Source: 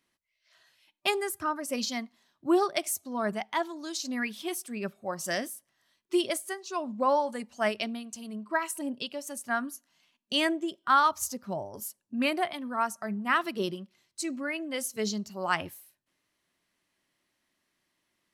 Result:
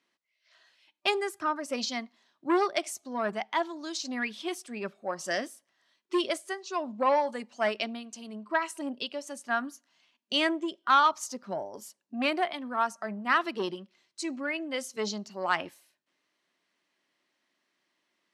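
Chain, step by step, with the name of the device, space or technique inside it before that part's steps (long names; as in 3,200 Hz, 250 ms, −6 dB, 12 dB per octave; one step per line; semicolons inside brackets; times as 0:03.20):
public-address speaker with an overloaded transformer (saturating transformer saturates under 1,100 Hz; band-pass filter 250–6,100 Hz)
level +1.5 dB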